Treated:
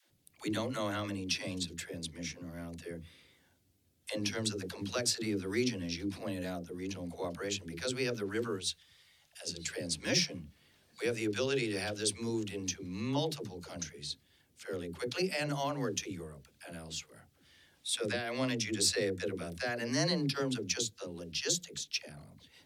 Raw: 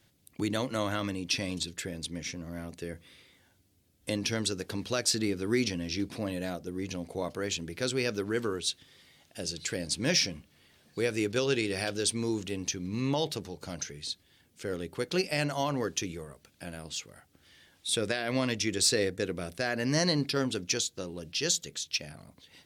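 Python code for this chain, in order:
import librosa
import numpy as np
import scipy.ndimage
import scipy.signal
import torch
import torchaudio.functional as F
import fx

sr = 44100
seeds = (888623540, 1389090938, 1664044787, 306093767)

y = fx.peak_eq(x, sr, hz=280.0, db=-14.0, octaves=1.9, at=(8.52, 9.43))
y = fx.dispersion(y, sr, late='lows', ms=105.0, hz=330.0)
y = y * librosa.db_to_amplitude(-4.0)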